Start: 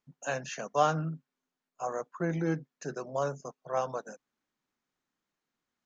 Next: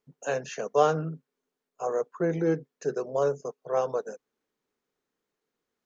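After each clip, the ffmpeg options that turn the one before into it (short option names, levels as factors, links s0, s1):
-af "equalizer=f=440:t=o:w=0.55:g=13"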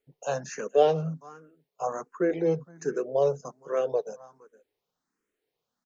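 -filter_complex "[0:a]aecho=1:1:464:0.0794,asplit=2[s0][s1];[s1]afreqshift=1.3[s2];[s0][s2]amix=inputs=2:normalize=1,volume=1.41"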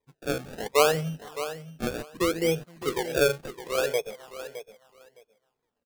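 -af "acrusher=samples=30:mix=1:aa=0.000001:lfo=1:lforange=30:lforate=0.68,aecho=1:1:613|1226:0.237|0.0403"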